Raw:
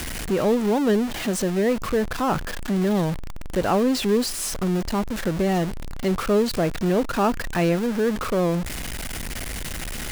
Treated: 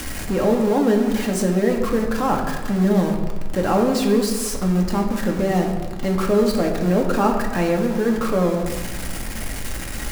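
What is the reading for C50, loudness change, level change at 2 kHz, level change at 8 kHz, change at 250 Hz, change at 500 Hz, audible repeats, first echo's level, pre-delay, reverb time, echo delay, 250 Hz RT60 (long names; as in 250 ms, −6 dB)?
5.5 dB, +3.0 dB, +1.0 dB, +1.0 dB, +3.5 dB, +2.5 dB, no echo audible, no echo audible, 4 ms, 1.4 s, no echo audible, 1.4 s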